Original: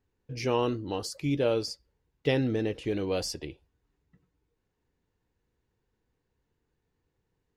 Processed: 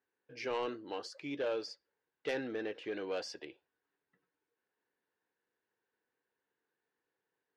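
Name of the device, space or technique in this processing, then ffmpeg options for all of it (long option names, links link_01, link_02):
intercom: -af "highpass=400,lowpass=4100,equalizer=frequency=1600:width_type=o:width=0.35:gain=8,asoftclip=type=tanh:threshold=-23.5dB,volume=-4.5dB"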